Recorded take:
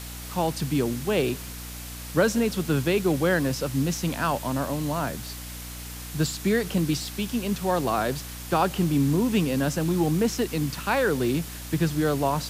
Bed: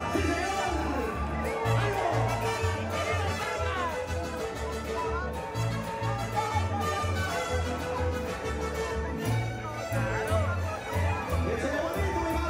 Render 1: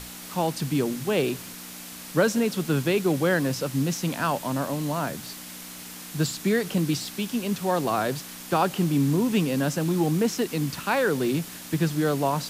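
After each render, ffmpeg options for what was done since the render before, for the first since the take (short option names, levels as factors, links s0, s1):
-af "bandreject=f=60:t=h:w=6,bandreject=f=120:t=h:w=6"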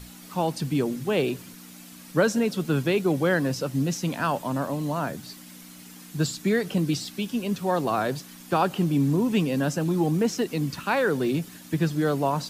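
-af "afftdn=nr=9:nf=-41"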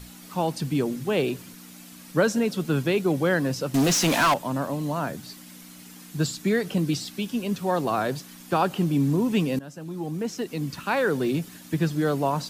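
-filter_complex "[0:a]asettb=1/sr,asplit=3[s0][s1][s2];[s0]atrim=end=3.744[s3];[s1]atrim=start=3.74:end=4.34,asetpts=PTS-STARTPTS,afade=t=in:d=0.004:c=qsin,afade=t=out:st=0.596:d=0.004:c=qsin,asplit=2[s4][s5];[s5]highpass=f=720:p=1,volume=20,asoftclip=type=tanh:threshold=0.224[s6];[s4][s6]amix=inputs=2:normalize=0,lowpass=f=7700:p=1,volume=0.501[s7];[s2]atrim=start=4.336[s8];[s3][s7]acrossfade=d=0.004:c1=hsin:c2=qsin[s9];[s9][s8]acrossfade=d=0.004:c1=qsin:c2=hsin,asplit=2[s10][s11];[s10]atrim=end=9.59,asetpts=PTS-STARTPTS,afade=t=out:st=9.586:d=0.004:c=hsin:silence=0.11885[s12];[s11]atrim=start=9.59,asetpts=PTS-STARTPTS,afade=t=in:d=1.45:silence=0.11885[s13];[s12][s13]concat=n=2:v=0:a=1"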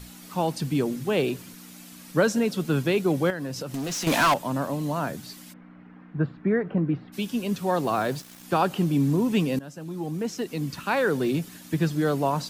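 -filter_complex "[0:a]asettb=1/sr,asplit=3[s0][s1][s2];[s0]atrim=end=3.304[s3];[s1]atrim=start=3.3:end=4.07,asetpts=PTS-STARTPTS,afade=t=in:d=0.004:c=qsin,afade=t=out:st=0.766:d=0.004:c=qsin,acompressor=threshold=0.0355:ratio=5:attack=3.2:release=140:knee=1:detection=peak[s4];[s2]atrim=start=4.066[s5];[s3][s4]acrossfade=d=0.004:c1=hsin:c2=qsin[s6];[s6][s5]acrossfade=d=0.004:c1=qsin:c2=hsin,asplit=3[s7][s8][s9];[s7]afade=t=out:st=5.52:d=0.02[s10];[s8]lowpass=f=1800:w=0.5412,lowpass=f=1800:w=1.3066,afade=t=in:st=5.52:d=0.02,afade=t=out:st=7.12:d=0.02[s11];[s9]afade=t=in:st=7.12:d=0.02[s12];[s10][s11][s12]amix=inputs=3:normalize=0,asettb=1/sr,asplit=3[s13][s14][s15];[s13]atrim=end=7.834[s16];[s14]atrim=start=7.83:end=8.43,asetpts=PTS-STARTPTS,afade=t=in:d=0.004:c=qsin,afade=t=out:st=0.596:d=0.004:c=qsin,aeval=exprs='val(0)*gte(abs(val(0)),0.0075)':c=same[s17];[s15]atrim=start=8.426[s18];[s16][s17]acrossfade=d=0.004:c1=hsin:c2=qsin[s19];[s19][s18]acrossfade=d=0.004:c1=qsin:c2=hsin"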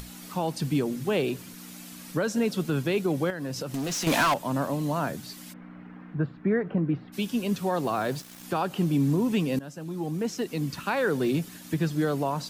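-af "alimiter=limit=0.15:level=0:latency=1:release=247,acompressor=mode=upward:threshold=0.0126:ratio=2.5"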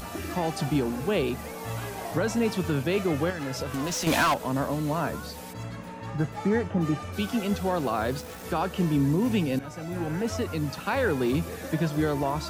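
-filter_complex "[1:a]volume=0.398[s0];[0:a][s0]amix=inputs=2:normalize=0"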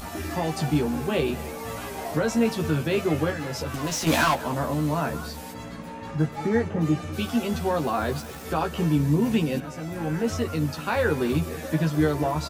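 -filter_complex "[0:a]asplit=2[s0][s1];[s1]adelay=13,volume=0.668[s2];[s0][s2]amix=inputs=2:normalize=0,asplit=2[s3][s4];[s4]adelay=204.1,volume=0.141,highshelf=f=4000:g=-4.59[s5];[s3][s5]amix=inputs=2:normalize=0"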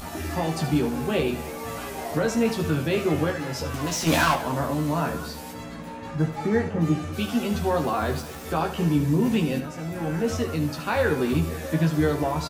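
-filter_complex "[0:a]asplit=2[s0][s1];[s1]adelay=24,volume=0.266[s2];[s0][s2]amix=inputs=2:normalize=0,aecho=1:1:74:0.282"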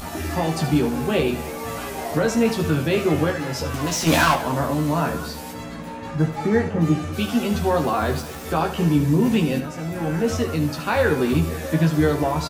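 -af "volume=1.5"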